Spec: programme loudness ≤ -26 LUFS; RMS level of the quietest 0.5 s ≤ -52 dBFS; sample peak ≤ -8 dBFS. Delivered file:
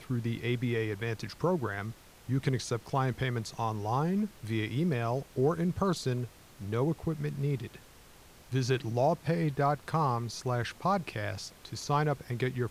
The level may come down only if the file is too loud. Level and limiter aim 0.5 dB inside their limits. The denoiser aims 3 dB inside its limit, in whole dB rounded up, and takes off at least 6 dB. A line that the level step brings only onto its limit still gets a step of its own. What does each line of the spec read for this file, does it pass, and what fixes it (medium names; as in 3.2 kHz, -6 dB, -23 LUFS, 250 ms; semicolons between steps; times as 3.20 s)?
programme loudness -32.0 LUFS: pass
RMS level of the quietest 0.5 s -55 dBFS: pass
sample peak -16.0 dBFS: pass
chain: none needed